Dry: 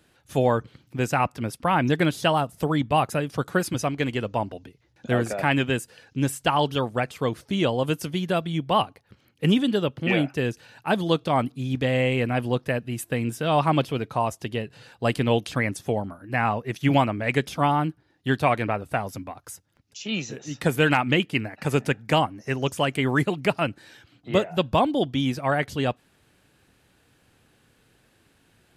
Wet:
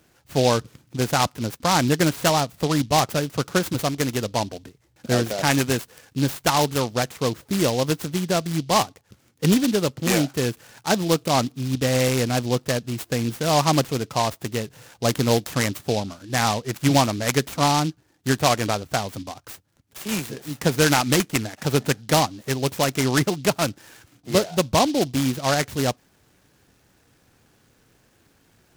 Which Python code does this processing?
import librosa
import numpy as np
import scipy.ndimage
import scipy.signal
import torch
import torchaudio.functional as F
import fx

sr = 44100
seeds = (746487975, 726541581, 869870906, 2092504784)

y = fx.noise_mod_delay(x, sr, seeds[0], noise_hz=4000.0, depth_ms=0.079)
y = y * librosa.db_to_amplitude(2.0)